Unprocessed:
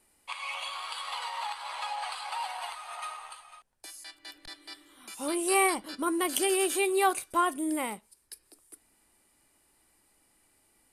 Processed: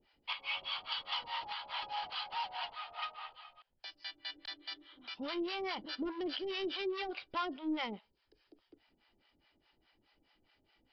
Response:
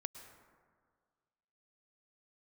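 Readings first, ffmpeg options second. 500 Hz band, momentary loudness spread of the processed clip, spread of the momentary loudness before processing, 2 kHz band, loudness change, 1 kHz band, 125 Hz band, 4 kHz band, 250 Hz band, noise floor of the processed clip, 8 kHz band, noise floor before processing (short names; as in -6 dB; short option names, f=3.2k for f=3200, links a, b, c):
-10.5 dB, 10 LU, 21 LU, -7.5 dB, -9.5 dB, -10.0 dB, n/a, -1.0 dB, -7.5 dB, -77 dBFS, under -35 dB, -68 dBFS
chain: -filter_complex "[0:a]equalizer=f=3.1k:w=6.1:g=9,bandreject=f=1.1k:w=11,alimiter=limit=-18dB:level=0:latency=1:release=288,aresample=11025,asoftclip=type=tanh:threshold=-31dB,aresample=44100,acrossover=split=590[a][b];[a]aeval=exprs='val(0)*(1-1/2+1/2*cos(2*PI*4.8*n/s))':c=same[c];[b]aeval=exprs='val(0)*(1-1/2-1/2*cos(2*PI*4.8*n/s))':c=same[d];[c][d]amix=inputs=2:normalize=0,volume=2dB"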